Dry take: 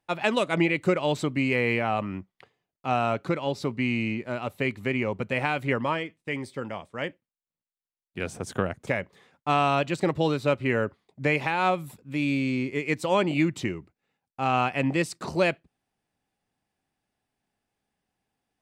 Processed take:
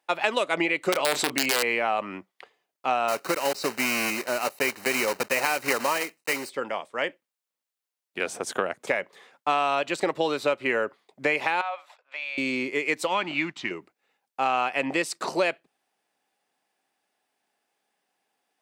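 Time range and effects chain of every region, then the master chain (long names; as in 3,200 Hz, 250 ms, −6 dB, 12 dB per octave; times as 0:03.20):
0:00.92–0:01.63: wrap-around overflow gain 15.5 dB + double-tracking delay 29 ms −13 dB + envelope flattener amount 50%
0:03.08–0:06.50: one scale factor per block 3 bits + Butterworth band-reject 3,400 Hz, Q 5.8
0:11.61–0:12.38: Chebyshev high-pass filter 620 Hz, order 4 + downward compressor 2.5 to 1, threshold −34 dBFS + high-frequency loss of the air 180 metres
0:13.07–0:13.71: mu-law and A-law mismatch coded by A + low-pass filter 4,100 Hz + parametric band 480 Hz −15 dB 0.88 octaves
whole clip: high-pass filter 430 Hz 12 dB per octave; downward compressor 3 to 1, threshold −28 dBFS; level +6.5 dB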